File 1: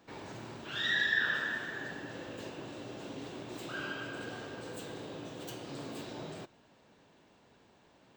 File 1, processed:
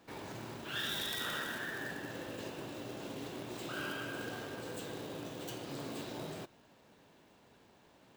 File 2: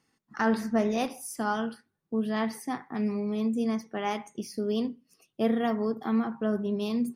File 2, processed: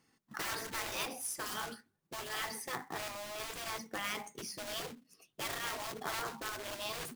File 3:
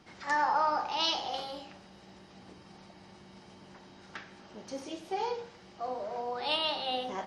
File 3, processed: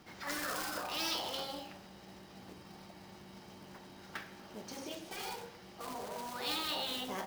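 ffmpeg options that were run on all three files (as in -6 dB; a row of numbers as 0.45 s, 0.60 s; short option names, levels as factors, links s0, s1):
-af "acrusher=bits=3:mode=log:mix=0:aa=0.000001,afftfilt=real='re*lt(hypot(re,im),0.0891)':imag='im*lt(hypot(re,im),0.0891)':win_size=1024:overlap=0.75"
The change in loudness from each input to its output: -4.0 LU, -9.5 LU, -7.0 LU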